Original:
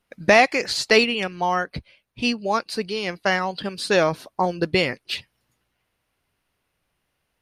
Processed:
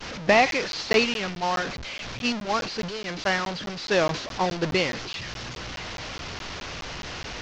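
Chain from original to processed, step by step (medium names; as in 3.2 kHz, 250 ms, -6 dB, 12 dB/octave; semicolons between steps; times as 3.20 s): one-bit delta coder 32 kbps, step -18.5 dBFS; expander -20 dBFS; crackling interface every 0.21 s, samples 512, zero, from 0.51 s; trim -3.5 dB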